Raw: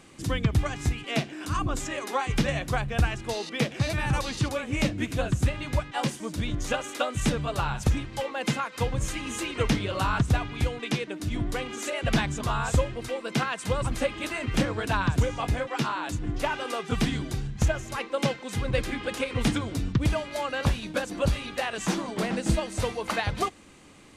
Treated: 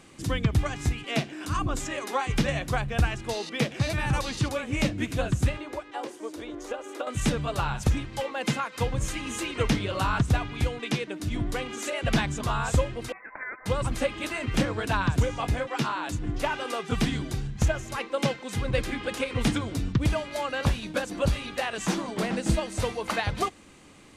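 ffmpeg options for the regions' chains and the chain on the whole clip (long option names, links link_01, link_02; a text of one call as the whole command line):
ffmpeg -i in.wav -filter_complex "[0:a]asettb=1/sr,asplit=3[link_01][link_02][link_03];[link_01]atrim=end=5.574[link_04];[link_02]atrim=start=5.57:end=7.07,asetpts=PTS-STARTPTS,afade=type=in:duration=0.004:curve=qsin,afade=type=out:start_time=1.496:duration=0.004:curve=qsin,lowshelf=frequency=240:width_type=q:width=3:gain=-12,acrossover=split=360|1400[link_05][link_06][link_07];[link_05]acompressor=threshold=-45dB:ratio=4[link_08];[link_06]acompressor=threshold=-33dB:ratio=4[link_09];[link_07]acompressor=threshold=-48dB:ratio=4[link_10];[link_08][link_09][link_10]amix=inputs=3:normalize=0[link_11];[link_03]atrim=start=7.066[link_12];[link_04][link_11]acrossfade=duration=0.004:curve1=hsin:curve2=qsin[link_13];[link_13][link_12]acrossfade=duration=0.004:curve1=qsin:curve2=hsin,asettb=1/sr,asplit=3[link_14][link_15][link_16];[link_14]atrim=end=13.124[link_17];[link_15]atrim=start=13.12:end=13.66,asetpts=PTS-STARTPTS,afade=type=in:duration=0.004:curve=qsin,afade=type=out:start_time=0.536:duration=0.004:curve=qsin,acompressor=threshold=-31dB:ratio=2.5:attack=3.2:release=140:knee=1:detection=peak,asuperpass=centerf=2000:order=8:qfactor=0.63,lowpass=frequency=2600:width_type=q:width=0.5098,lowpass=frequency=2600:width_type=q:width=0.6013,lowpass=frequency=2600:width_type=q:width=0.9,lowpass=frequency=2600:width_type=q:width=2.563,afreqshift=-3100[link_18];[link_16]atrim=start=13.656[link_19];[link_17][link_18]acrossfade=duration=0.004:curve1=hsin:curve2=qsin[link_20];[link_20][link_19]acrossfade=duration=0.004:curve1=qsin:curve2=hsin" out.wav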